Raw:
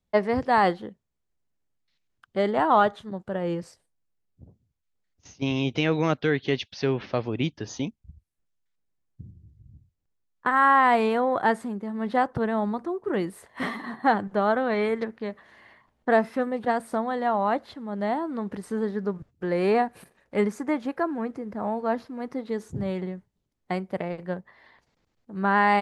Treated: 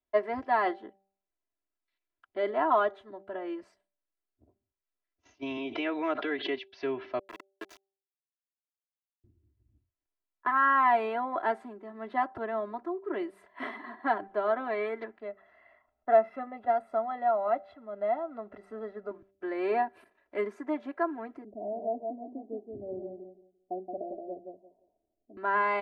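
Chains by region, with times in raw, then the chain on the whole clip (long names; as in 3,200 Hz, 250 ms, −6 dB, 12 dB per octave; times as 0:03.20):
0:05.57–0:06.69: band-pass filter 200–4,500 Hz + background raised ahead of every attack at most 56 dB per second
0:07.19–0:09.24: volume swells 580 ms + high-pass filter 310 Hz 24 dB per octave + log-companded quantiser 2 bits
0:15.20–0:19.11: high-shelf EQ 2,300 Hz −10 dB + comb filter 1.5 ms, depth 64%
0:21.44–0:25.37: Butterworth low-pass 750 Hz 72 dB per octave + parametric band 180 Hz +4 dB 0.62 octaves + repeating echo 173 ms, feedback 21%, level −5 dB
whole clip: three-way crossover with the lows and the highs turned down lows −13 dB, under 300 Hz, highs −17 dB, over 3,100 Hz; comb filter 3 ms, depth 95%; hum removal 195 Hz, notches 4; level −7.5 dB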